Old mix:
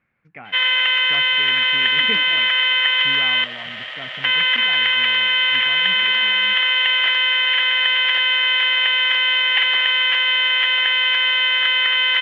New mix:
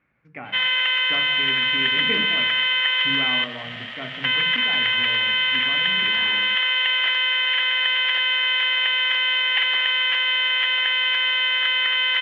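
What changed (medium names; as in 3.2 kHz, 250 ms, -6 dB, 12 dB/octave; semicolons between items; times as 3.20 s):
background -3.5 dB; reverb: on, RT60 1.1 s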